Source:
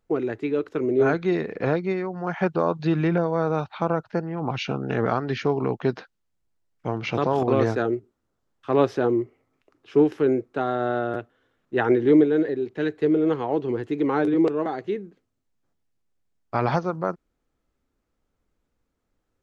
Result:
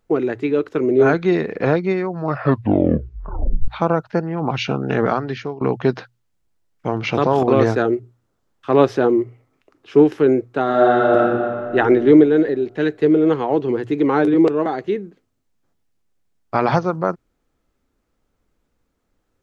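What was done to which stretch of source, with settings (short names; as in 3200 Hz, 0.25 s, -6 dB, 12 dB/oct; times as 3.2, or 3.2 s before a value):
2.08 tape stop 1.60 s
5.02–5.61 fade out, to -18.5 dB
10.63–11.75 reverb throw, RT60 2.3 s, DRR -3.5 dB
whole clip: notches 60/120 Hz; gain +6 dB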